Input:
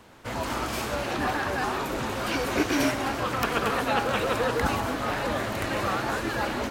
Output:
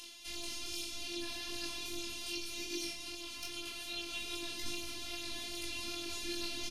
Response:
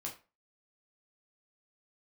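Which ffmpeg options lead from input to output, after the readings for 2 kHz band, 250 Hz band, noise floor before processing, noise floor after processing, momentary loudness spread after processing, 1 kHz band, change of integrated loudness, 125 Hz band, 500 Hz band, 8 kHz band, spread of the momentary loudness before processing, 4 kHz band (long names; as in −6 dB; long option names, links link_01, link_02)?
−15.5 dB, −16.5 dB, −33 dBFS, −46 dBFS, 3 LU, −26.0 dB, −12.5 dB, −24.5 dB, −21.0 dB, −4.0 dB, 4 LU, −3.5 dB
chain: -filter_complex "[0:a]lowpass=frequency=12000:width=0.5412,lowpass=frequency=12000:width=1.3066,aexciter=amount=12.7:drive=6.9:freq=2500,highshelf=frequency=2000:gain=8.5[link_01];[1:a]atrim=start_sample=2205,asetrate=48510,aresample=44100[link_02];[link_01][link_02]afir=irnorm=-1:irlink=0,afftfilt=real='hypot(re,im)*cos(PI*b)':imag='0':win_size=512:overlap=0.75,dynaudnorm=framelen=160:gausssize=7:maxgain=13.5dB,highshelf=frequency=4500:gain=-10.5,bandreject=frequency=7600:width=5.8,asplit=2[link_03][link_04];[link_04]adelay=454.8,volume=-30dB,highshelf=frequency=4000:gain=-10.2[link_05];[link_03][link_05]amix=inputs=2:normalize=0,acrossover=split=270[link_06][link_07];[link_07]acompressor=threshold=-55dB:ratio=2[link_08];[link_06][link_08]amix=inputs=2:normalize=0,flanger=delay=20:depth=2.2:speed=2.5,volume=5.5dB"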